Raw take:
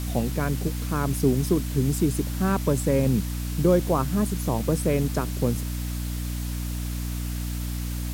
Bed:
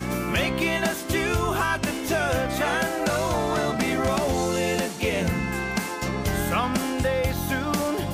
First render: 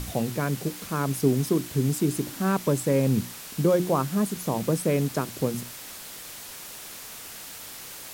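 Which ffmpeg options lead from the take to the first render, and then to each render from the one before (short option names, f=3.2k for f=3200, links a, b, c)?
-af "bandreject=f=60:t=h:w=6,bandreject=f=120:t=h:w=6,bandreject=f=180:t=h:w=6,bandreject=f=240:t=h:w=6,bandreject=f=300:t=h:w=6,bandreject=f=360:t=h:w=6"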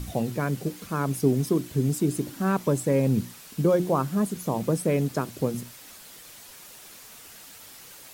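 -af "afftdn=nr=7:nf=-41"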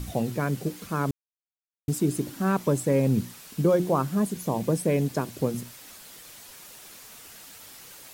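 -filter_complex "[0:a]asettb=1/sr,asplit=3[a][b][c];[a]atrim=end=4.194[d];[b]atrim=start=4.19:end=5.32,asetpts=PTS-STARTPTS,afade=t=in:d=0.004:c=qsin,afade=t=out:st=1.126:d=0.004:c=qsin,bandreject=f=1.3k:w=7.9[e];[c]atrim=start=5.316[f];[d][e]acrossfade=d=0.004:c1=hsin:c2=qsin[g];[g][f]acrossfade=d=0.004:c1=qsin:c2=hsin,asplit=3[h][i][j];[h]atrim=end=1.11,asetpts=PTS-STARTPTS,afade=t=out:st=1.106:d=0.004:c=hsin[k];[i]atrim=start=1.11:end=1.88,asetpts=PTS-STARTPTS,volume=0[l];[j]atrim=start=1.88,asetpts=PTS-STARTPTS,afade=t=in:d=0.004:c=hsin[m];[k][l][m]concat=n=3:v=0:a=1"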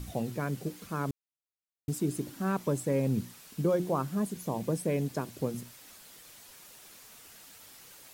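-af "volume=-6dB"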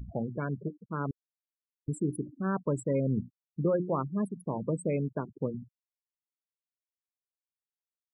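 -af "afftfilt=real='re*gte(hypot(re,im),0.0251)':imag='im*gte(hypot(re,im),0.0251)':win_size=1024:overlap=0.75,bandreject=f=740:w=13"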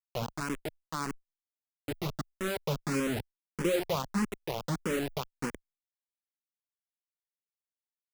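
-filter_complex "[0:a]acrusher=bits=4:mix=0:aa=0.000001,asplit=2[a][b];[b]afreqshift=1.6[c];[a][c]amix=inputs=2:normalize=1"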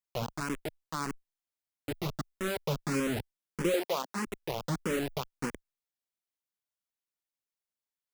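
-filter_complex "[0:a]asettb=1/sr,asplit=3[a][b][c];[a]atrim=end=3.744[d];[b]atrim=start=3.74:end=4.27,asetpts=PTS-STARTPTS,afade=t=in:d=0.004:c=qsin,afade=t=out:st=0.526:d=0.004:c=qsin,highpass=f=250:w=0.5412,highpass=f=250:w=1.3066[e];[c]atrim=start=4.266[f];[d][e]acrossfade=d=0.004:c1=hsin:c2=qsin[g];[g][f]acrossfade=d=0.004:c1=qsin:c2=hsin"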